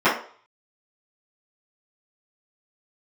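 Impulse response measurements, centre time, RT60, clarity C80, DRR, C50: 31 ms, 0.50 s, 12.0 dB, -14.5 dB, 6.5 dB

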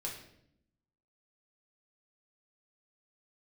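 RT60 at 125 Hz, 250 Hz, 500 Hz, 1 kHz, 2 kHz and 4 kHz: 1.1, 1.1, 0.80, 0.60, 0.65, 0.60 s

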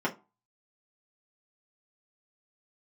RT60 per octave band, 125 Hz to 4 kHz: 0.30, 0.30, 0.25, 0.30, 0.20, 0.15 s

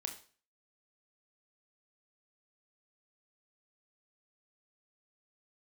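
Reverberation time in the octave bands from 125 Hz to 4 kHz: 0.45, 0.45, 0.40, 0.40, 0.40, 0.40 s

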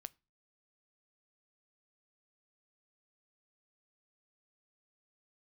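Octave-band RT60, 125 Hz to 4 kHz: 0.50, 0.40, 0.35, 0.30, 0.25, 0.25 s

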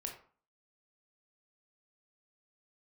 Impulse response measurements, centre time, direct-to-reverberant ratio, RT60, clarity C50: 22 ms, 1.5 dB, 0.45 s, 7.0 dB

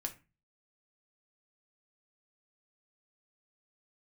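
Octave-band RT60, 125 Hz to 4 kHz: 0.50, 0.45, 0.30, 0.30, 0.30, 0.20 s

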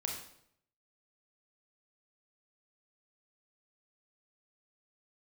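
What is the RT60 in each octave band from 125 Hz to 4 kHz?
0.85, 0.75, 0.75, 0.65, 0.60, 0.60 s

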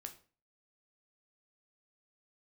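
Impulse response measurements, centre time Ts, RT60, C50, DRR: 9 ms, 0.40 s, 13.0 dB, 5.0 dB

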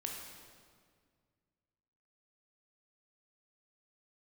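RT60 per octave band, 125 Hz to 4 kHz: 2.6, 2.4, 2.0, 1.8, 1.6, 1.5 s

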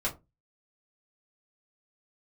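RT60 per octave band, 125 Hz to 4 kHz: 0.40, 0.30, 0.25, 0.20, 0.15, 0.15 s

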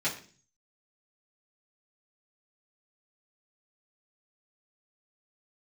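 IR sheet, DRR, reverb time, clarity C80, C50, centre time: -9.0 dB, 0.40 s, 14.0 dB, 10.0 dB, 21 ms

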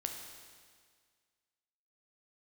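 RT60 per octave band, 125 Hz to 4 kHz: 1.8, 1.8, 1.8, 1.8, 1.8, 1.8 s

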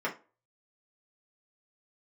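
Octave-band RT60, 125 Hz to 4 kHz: 0.25, 0.30, 0.35, 0.30, 0.25, 0.20 s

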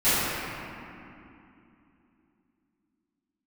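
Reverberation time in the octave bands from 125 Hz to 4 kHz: 3.2, 4.1, 2.8, 2.7, 2.5, 1.7 s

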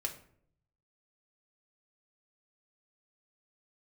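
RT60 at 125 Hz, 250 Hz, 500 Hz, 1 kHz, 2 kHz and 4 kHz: 1.2, 0.80, 0.70, 0.55, 0.50, 0.35 s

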